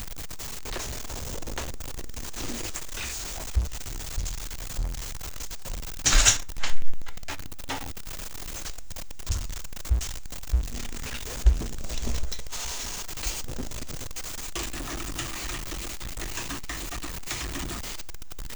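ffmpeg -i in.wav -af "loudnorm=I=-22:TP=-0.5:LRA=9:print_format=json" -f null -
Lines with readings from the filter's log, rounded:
"input_i" : "-31.6",
"input_tp" : "-3.2",
"input_lra" : "7.6",
"input_thresh" : "-41.7",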